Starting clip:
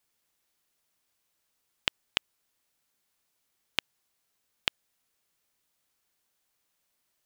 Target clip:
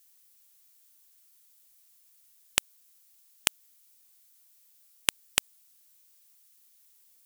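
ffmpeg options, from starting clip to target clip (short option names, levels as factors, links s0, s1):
-af "areverse,crystalizer=i=6.5:c=0,aeval=exprs='(mod(0.668*val(0)+1,2)-1)/0.668':c=same,volume=0.596"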